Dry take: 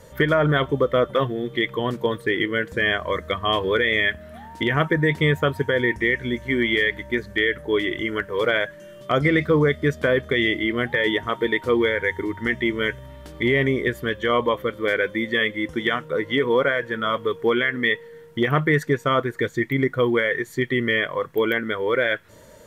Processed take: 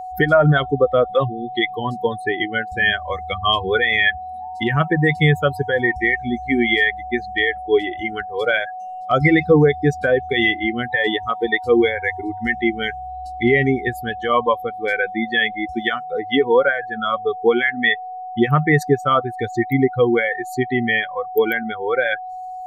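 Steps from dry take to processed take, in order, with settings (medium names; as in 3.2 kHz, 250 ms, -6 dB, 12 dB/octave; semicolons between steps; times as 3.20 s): expander on every frequency bin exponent 2; whistle 740 Hz -37 dBFS; trim +8.5 dB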